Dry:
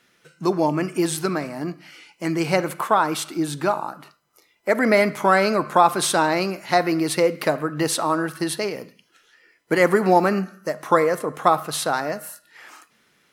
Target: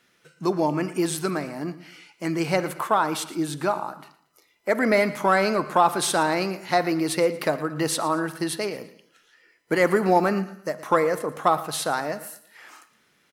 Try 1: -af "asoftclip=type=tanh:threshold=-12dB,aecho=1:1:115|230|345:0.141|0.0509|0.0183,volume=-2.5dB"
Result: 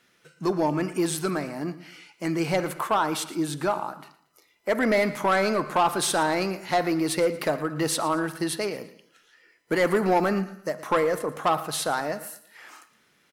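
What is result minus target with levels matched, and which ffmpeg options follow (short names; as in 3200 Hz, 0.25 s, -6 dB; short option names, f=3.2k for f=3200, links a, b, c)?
soft clip: distortion +15 dB
-af "asoftclip=type=tanh:threshold=-1.5dB,aecho=1:1:115|230|345:0.141|0.0509|0.0183,volume=-2.5dB"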